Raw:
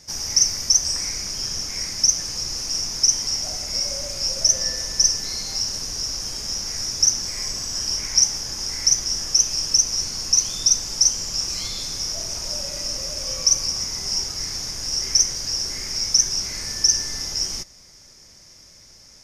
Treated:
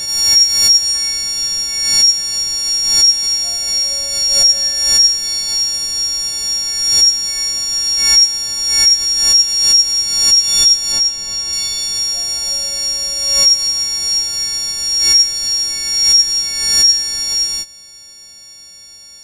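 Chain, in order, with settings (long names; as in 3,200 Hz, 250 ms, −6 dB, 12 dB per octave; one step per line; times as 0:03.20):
every partial snapped to a pitch grid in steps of 4 semitones
in parallel at −3 dB: downward compressor, threshold −15 dBFS, peak gain reduction 11.5 dB
0:10.92–0:11.53: on the sum: high-shelf EQ 5,600 Hz −9 dB
background raised ahead of every attack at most 41 dB per second
level −5 dB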